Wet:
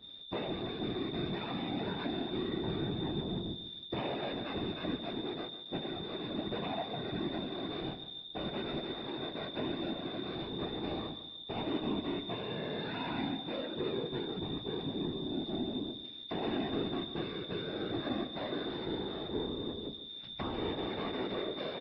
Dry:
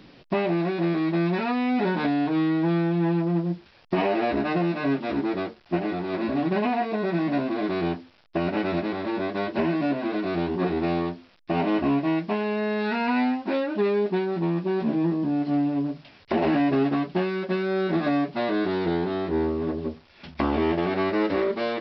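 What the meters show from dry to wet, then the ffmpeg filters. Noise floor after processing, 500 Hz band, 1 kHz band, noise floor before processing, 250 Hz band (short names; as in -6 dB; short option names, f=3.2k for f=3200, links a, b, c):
-47 dBFS, -12.5 dB, -13.0 dB, -55 dBFS, -13.5 dB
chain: -filter_complex "[0:a]highshelf=f=3.1k:g=-10,aeval=exprs='val(0)+0.0178*sin(2*PI*3600*n/s)':c=same,afftfilt=real='hypot(re,im)*cos(2*PI*random(0))':imag='hypot(re,im)*sin(2*PI*random(1))':win_size=512:overlap=0.75,asplit=2[a][b];[b]adelay=147,lowpass=f=4.9k:p=1,volume=-12dB,asplit=2[c][d];[d]adelay=147,lowpass=f=4.9k:p=1,volume=0.39,asplit=2[e][f];[f]adelay=147,lowpass=f=4.9k:p=1,volume=0.39,asplit=2[g][h];[h]adelay=147,lowpass=f=4.9k:p=1,volume=0.39[i];[c][e][g][i]amix=inputs=4:normalize=0[j];[a][j]amix=inputs=2:normalize=0,adynamicequalizer=threshold=0.00447:dfrequency=1900:dqfactor=0.7:tfrequency=1900:tqfactor=0.7:attack=5:release=100:ratio=0.375:range=2:mode=boostabove:tftype=highshelf,volume=-7dB"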